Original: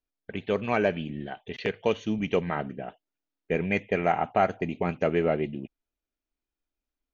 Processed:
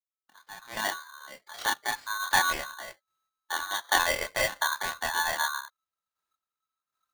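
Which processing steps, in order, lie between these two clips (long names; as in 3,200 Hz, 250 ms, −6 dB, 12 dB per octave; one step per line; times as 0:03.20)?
fade in at the beginning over 2.32 s
square-wave tremolo 1.3 Hz, depth 60%, duty 25%
multi-voice chorus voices 2, 0.29 Hz, delay 26 ms, depth 3.1 ms
ring modulator with a square carrier 1,300 Hz
level +6 dB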